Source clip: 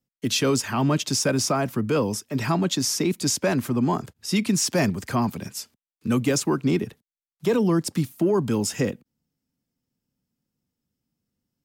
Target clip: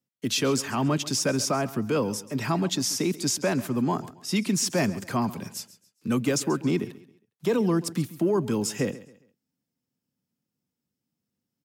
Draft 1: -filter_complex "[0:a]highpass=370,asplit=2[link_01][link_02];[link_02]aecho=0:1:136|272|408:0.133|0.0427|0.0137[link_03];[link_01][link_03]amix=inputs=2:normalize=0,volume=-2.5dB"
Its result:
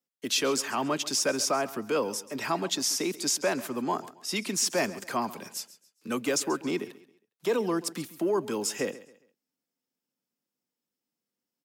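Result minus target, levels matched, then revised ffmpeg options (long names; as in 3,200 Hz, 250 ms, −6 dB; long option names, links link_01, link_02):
125 Hz band −11.5 dB
-filter_complex "[0:a]highpass=110,asplit=2[link_01][link_02];[link_02]aecho=0:1:136|272|408:0.133|0.0427|0.0137[link_03];[link_01][link_03]amix=inputs=2:normalize=0,volume=-2.5dB"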